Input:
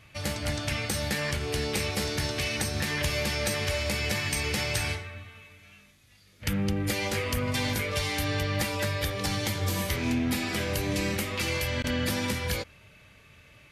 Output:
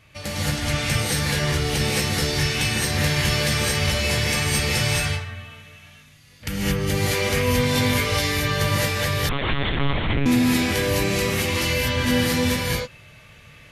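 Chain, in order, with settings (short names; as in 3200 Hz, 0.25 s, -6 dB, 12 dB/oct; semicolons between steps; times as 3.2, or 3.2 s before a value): non-linear reverb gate 0.25 s rising, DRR -6.5 dB; 9.29–10.26 monotone LPC vocoder at 8 kHz 140 Hz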